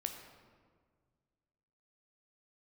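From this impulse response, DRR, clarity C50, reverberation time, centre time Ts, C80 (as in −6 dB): 4.5 dB, 6.0 dB, 1.7 s, 34 ms, 7.5 dB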